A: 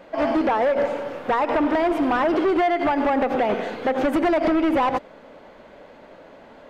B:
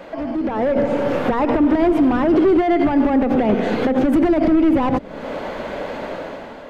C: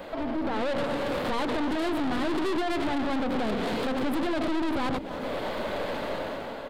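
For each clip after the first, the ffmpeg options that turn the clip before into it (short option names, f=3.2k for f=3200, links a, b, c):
-filter_complex "[0:a]acrossover=split=320[a][b];[b]acompressor=threshold=-40dB:ratio=3[c];[a][c]amix=inputs=2:normalize=0,alimiter=level_in=3dB:limit=-24dB:level=0:latency=1:release=185,volume=-3dB,dynaudnorm=f=160:g=7:m=10dB,volume=8.5dB"
-filter_complex "[0:a]aeval=exprs='(tanh(22.4*val(0)+0.6)-tanh(0.6))/22.4':c=same,aexciter=amount=1.5:drive=4.5:freq=3.3k,asplit=2[a][b];[b]adelay=290,highpass=300,lowpass=3.4k,asoftclip=type=hard:threshold=-29.5dB,volume=-8dB[c];[a][c]amix=inputs=2:normalize=0"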